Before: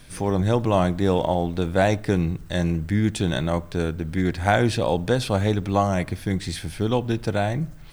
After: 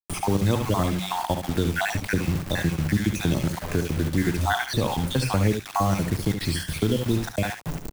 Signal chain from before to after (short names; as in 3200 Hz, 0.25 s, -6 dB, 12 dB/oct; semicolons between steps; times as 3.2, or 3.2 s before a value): random spectral dropouts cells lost 51%; dynamic EQ 660 Hz, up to -8 dB, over -37 dBFS, Q 1.3; notches 60/120/180 Hz; in parallel at +0.5 dB: compressor 10:1, threshold -32 dBFS, peak gain reduction 14.5 dB; on the sum: requantised 6-bit, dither none; on a send: early reflections 57 ms -15.5 dB, 71 ms -8 dB; on the sum: three-band squash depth 40%